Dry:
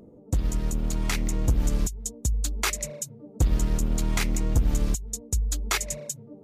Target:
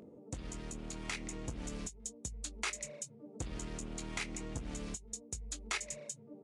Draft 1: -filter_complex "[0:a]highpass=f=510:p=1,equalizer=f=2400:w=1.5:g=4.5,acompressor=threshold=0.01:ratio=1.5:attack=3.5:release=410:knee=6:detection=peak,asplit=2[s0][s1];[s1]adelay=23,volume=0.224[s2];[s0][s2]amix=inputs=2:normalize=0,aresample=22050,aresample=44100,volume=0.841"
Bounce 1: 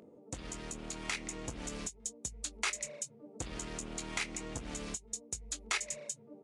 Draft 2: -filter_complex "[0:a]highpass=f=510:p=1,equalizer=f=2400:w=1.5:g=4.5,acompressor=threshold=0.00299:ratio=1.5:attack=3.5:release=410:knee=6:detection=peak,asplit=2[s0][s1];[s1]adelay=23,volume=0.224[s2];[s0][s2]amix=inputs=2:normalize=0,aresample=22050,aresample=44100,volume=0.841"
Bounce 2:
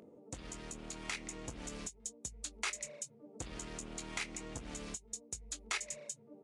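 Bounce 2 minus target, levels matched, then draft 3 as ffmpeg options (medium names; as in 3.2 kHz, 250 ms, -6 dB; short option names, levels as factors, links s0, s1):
250 Hz band -3.0 dB
-filter_complex "[0:a]highpass=f=190:p=1,equalizer=f=2400:w=1.5:g=4.5,acompressor=threshold=0.00299:ratio=1.5:attack=3.5:release=410:knee=6:detection=peak,asplit=2[s0][s1];[s1]adelay=23,volume=0.224[s2];[s0][s2]amix=inputs=2:normalize=0,aresample=22050,aresample=44100,volume=0.841"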